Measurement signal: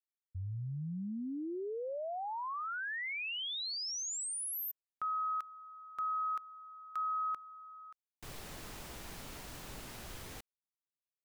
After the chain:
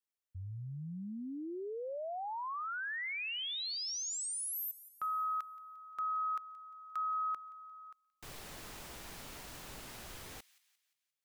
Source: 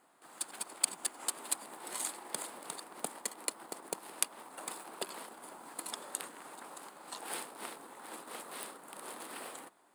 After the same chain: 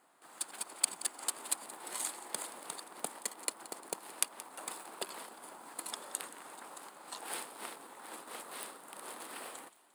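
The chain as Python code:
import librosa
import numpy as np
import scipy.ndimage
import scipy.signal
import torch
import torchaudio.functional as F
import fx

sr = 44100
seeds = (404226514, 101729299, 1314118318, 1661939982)

p1 = fx.low_shelf(x, sr, hz=380.0, db=-4.0)
y = p1 + fx.echo_wet_highpass(p1, sr, ms=175, feedback_pct=46, hz=2200.0, wet_db=-17.0, dry=0)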